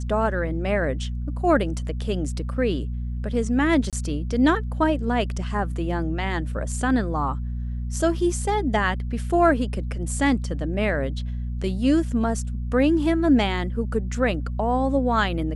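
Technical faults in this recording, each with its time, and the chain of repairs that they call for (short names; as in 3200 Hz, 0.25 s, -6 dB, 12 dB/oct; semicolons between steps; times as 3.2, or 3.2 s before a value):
hum 60 Hz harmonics 4 -28 dBFS
3.9–3.93 gap 27 ms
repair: de-hum 60 Hz, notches 4; interpolate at 3.9, 27 ms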